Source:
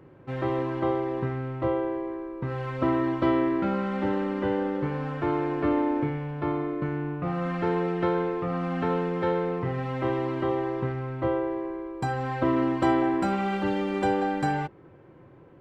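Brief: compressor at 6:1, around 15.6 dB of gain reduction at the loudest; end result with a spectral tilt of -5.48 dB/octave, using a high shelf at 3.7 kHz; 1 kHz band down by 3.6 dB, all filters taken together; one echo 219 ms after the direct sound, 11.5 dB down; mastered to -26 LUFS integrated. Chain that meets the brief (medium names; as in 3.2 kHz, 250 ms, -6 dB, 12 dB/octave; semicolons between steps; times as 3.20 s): peaking EQ 1 kHz -5 dB; treble shelf 3.7 kHz +3.5 dB; compression 6:1, threshold -38 dBFS; delay 219 ms -11.5 dB; trim +14.5 dB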